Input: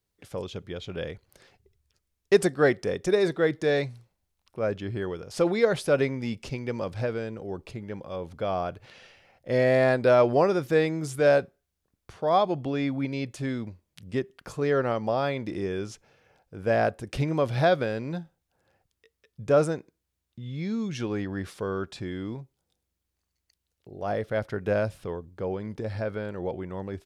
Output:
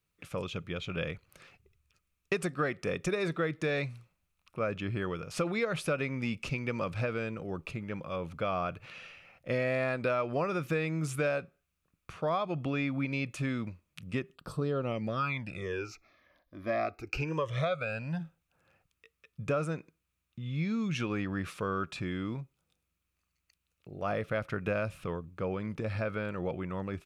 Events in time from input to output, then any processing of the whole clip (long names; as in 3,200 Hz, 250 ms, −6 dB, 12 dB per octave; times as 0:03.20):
0:14.34–0:18.19: all-pass phaser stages 12, 0.43 Hz → 0.079 Hz, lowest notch 140–2,300 Hz
whole clip: thirty-one-band graphic EQ 160 Hz +6 dB, 400 Hz −4 dB, 800 Hz −4 dB, 1,250 Hz +10 dB, 2,500 Hz +11 dB, 5,000 Hz −3 dB; downward compressor 6 to 1, threshold −26 dBFS; level −1.5 dB